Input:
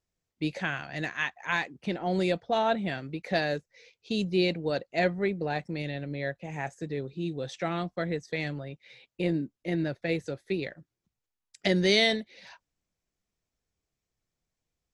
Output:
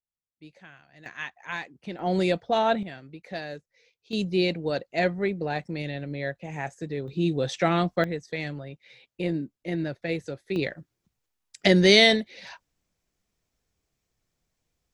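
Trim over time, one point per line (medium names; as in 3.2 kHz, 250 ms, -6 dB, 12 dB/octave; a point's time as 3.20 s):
-18 dB
from 1.06 s -5 dB
from 1.99 s +3 dB
from 2.83 s -7.5 dB
from 4.13 s +1.5 dB
from 7.08 s +8 dB
from 8.04 s 0 dB
from 10.56 s +6.5 dB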